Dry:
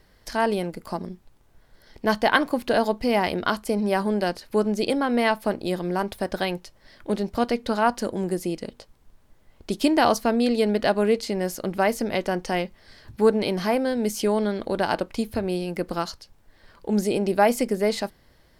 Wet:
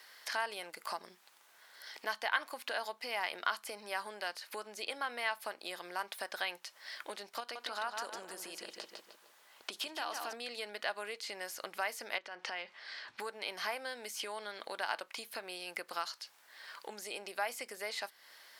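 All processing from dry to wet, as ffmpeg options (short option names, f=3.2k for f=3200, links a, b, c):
-filter_complex "[0:a]asettb=1/sr,asplit=3[a][b][c];[a]atrim=end=7.404[d];[b]atrim=start=7.4:end=10.33,asetpts=PTS-STARTPTS,afade=t=in:d=0.004:c=qsin,afade=t=out:st=2.926:d=0.004:c=qsin,equalizer=f=2.1k:w=5.2:g=-4.5,acompressor=threshold=-27dB:ratio=3:attack=3.2:release=140:knee=1:detection=peak,asplit=2[e][f];[f]adelay=153,lowpass=f=3.7k:p=1,volume=-6dB,asplit=2[g][h];[h]adelay=153,lowpass=f=3.7k:p=1,volume=0.44,asplit=2[i][j];[j]adelay=153,lowpass=f=3.7k:p=1,volume=0.44,asplit=2[k][l];[l]adelay=153,lowpass=f=3.7k:p=1,volume=0.44,asplit=2[m][n];[n]adelay=153,lowpass=f=3.7k:p=1,volume=0.44[o];[e][g][i][k][m][o]amix=inputs=6:normalize=0,atrim=end_sample=129213[p];[c]atrim=start=10.326[q];[d][p]acrossfade=d=0.004:c1=hsin:c2=qsin[r];[r][q]acrossfade=d=0.004:c1=qsin:c2=hsin,asettb=1/sr,asplit=3[s][t][u];[s]atrim=end=12.184[v];[t]atrim=start=12.18:end=13.2,asetpts=PTS-STARTPTS,afade=t=in:d=0.004:c=qsin,afade=t=out:st=1.016:d=0.004:c=qsin,lowpass=4.1k,acompressor=threshold=-32dB:ratio=8:attack=3.2:release=140:knee=1:detection=peak[w];[u]atrim=start=13.196[x];[v][w]acrossfade=d=0.004:c1=hsin:c2=qsin[y];[y][x]acrossfade=d=0.004:c1=qsin:c2=hsin,acompressor=threshold=-36dB:ratio=4,highpass=1.2k,acrossover=split=3300[z][aa];[aa]acompressor=threshold=-50dB:ratio=4:attack=1:release=60[ab];[z][ab]amix=inputs=2:normalize=0,volume=8dB"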